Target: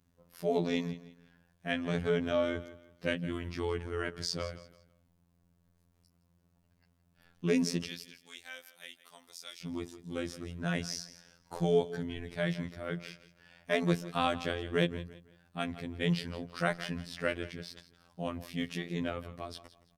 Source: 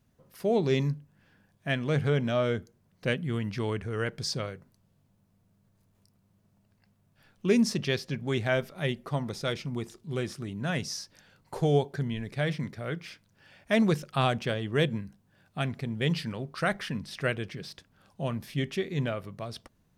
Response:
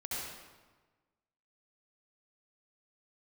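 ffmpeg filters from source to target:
-filter_complex "[0:a]asettb=1/sr,asplit=3[s0][s1][s2];[s0]atrim=end=7.874[s3];[s1]atrim=start=7.87:end=9.62,asetpts=PTS-STARTPTS,afade=t=in:d=0.004:c=qsin,afade=t=out:st=1.746:d=0.004:c=qsin,aderivative[s4];[s2]atrim=start=9.616[s5];[s3][s4]acrossfade=d=0.004:c1=hsin:c2=qsin[s6];[s6][s5]acrossfade=d=0.004:c1=qsin:c2=hsin,aecho=1:1:167|334|501:0.158|0.0491|0.0152,afftfilt=real='hypot(re,im)*cos(PI*b)':imag='0':win_size=2048:overlap=0.75"

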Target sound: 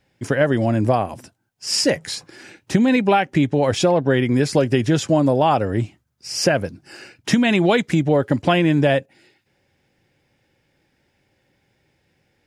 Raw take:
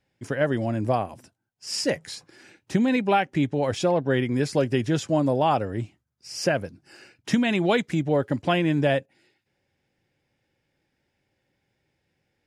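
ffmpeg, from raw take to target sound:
-af "acompressor=threshold=0.0708:ratio=2.5,volume=2.82"

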